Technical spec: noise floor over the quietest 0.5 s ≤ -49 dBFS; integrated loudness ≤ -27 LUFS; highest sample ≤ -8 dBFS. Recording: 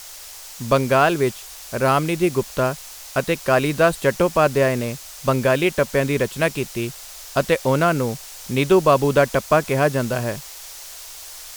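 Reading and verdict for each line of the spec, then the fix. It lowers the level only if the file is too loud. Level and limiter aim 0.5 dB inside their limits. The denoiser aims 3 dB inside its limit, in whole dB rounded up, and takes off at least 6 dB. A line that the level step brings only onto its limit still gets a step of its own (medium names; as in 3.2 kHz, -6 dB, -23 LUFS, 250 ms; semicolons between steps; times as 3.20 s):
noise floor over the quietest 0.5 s -39 dBFS: fail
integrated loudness -20.0 LUFS: fail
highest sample -3.0 dBFS: fail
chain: noise reduction 6 dB, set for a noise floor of -39 dBFS; trim -7.5 dB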